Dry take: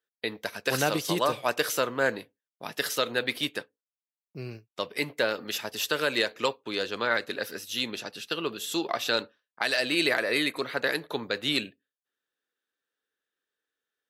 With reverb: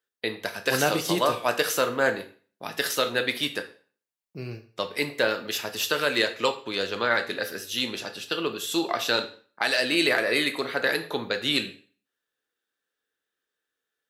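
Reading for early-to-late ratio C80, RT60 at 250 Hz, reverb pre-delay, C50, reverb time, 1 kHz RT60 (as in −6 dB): 17.0 dB, 0.40 s, 5 ms, 13.0 dB, 0.40 s, 0.45 s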